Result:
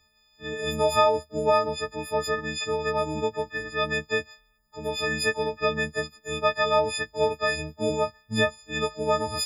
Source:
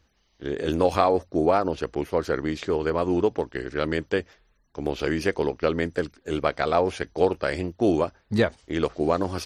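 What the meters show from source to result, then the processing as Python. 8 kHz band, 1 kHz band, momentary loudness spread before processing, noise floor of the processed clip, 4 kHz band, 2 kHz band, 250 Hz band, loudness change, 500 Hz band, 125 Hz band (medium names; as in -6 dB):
+8.5 dB, +0.5 dB, 8 LU, -65 dBFS, +6.5 dB, +4.0 dB, -8.5 dB, -1.0 dB, -2.0 dB, -4.0 dB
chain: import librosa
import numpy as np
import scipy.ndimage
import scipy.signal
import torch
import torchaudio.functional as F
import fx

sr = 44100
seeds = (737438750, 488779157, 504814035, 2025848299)

y = fx.freq_snap(x, sr, grid_st=6)
y = fx.peak_eq(y, sr, hz=330.0, db=-12.0, octaves=0.31)
y = y * librosa.db_to_amplitude(-3.5)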